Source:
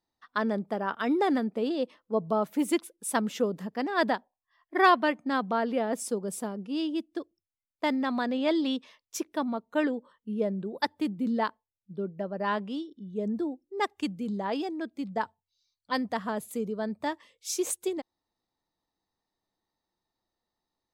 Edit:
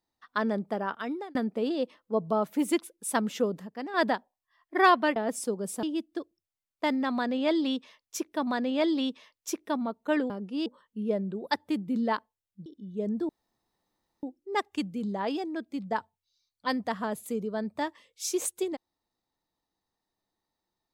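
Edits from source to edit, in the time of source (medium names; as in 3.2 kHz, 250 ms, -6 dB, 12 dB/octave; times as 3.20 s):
0.80–1.35 s: fade out
3.60–3.94 s: gain -6 dB
5.16–5.80 s: delete
6.47–6.83 s: move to 9.97 s
8.14–9.47 s: loop, 2 plays
11.97–12.85 s: delete
13.48 s: insert room tone 0.94 s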